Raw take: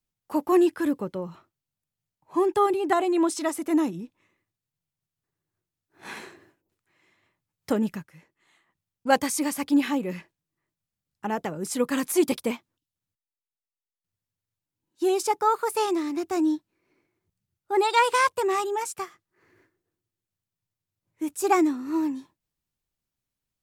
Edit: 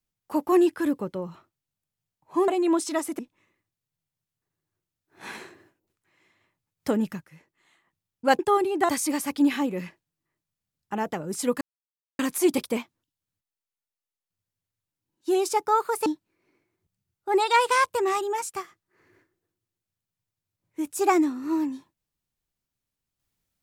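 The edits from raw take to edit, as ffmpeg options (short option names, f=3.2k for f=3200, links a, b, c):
-filter_complex "[0:a]asplit=7[a][b][c][d][e][f][g];[a]atrim=end=2.482[h];[b]atrim=start=2.978:end=3.692[i];[c]atrim=start=4.008:end=9.212[j];[d]atrim=start=2.478:end=2.982[k];[e]atrim=start=9.208:end=11.93,asetpts=PTS-STARTPTS,afade=t=out:st=2.718:d=0.004:c=hsin,apad=pad_dur=0.58[l];[f]atrim=start=11.93:end=15.802,asetpts=PTS-STARTPTS,afade=t=in:d=0.004:c=hsin[m];[g]atrim=start=16.488[n];[h][i]acrossfade=d=0.004:c1=hsin:c2=hsin[o];[o][j]acrossfade=d=0.004:c1=hsin:c2=hsin[p];[p][k]acrossfade=d=0.004:c1=hsin:c2=hsin[q];[l][m]concat=n=2:v=0:a=1[r];[q][r]acrossfade=d=0.004:c1=hsin:c2=hsin[s];[s][n]acrossfade=d=0.004:c1=hsin:c2=hsin"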